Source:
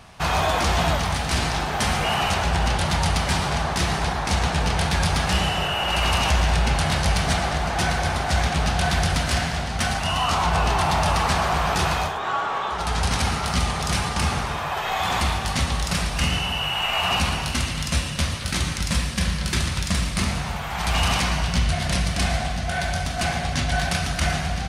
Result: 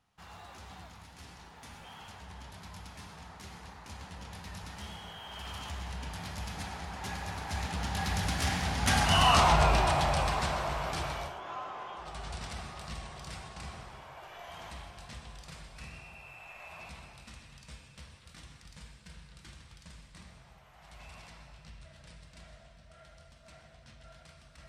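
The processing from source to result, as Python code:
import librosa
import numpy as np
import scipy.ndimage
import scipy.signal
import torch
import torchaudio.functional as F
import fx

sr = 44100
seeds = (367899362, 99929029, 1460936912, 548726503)

y = fx.doppler_pass(x, sr, speed_mps=33, closest_m=12.0, pass_at_s=9.25)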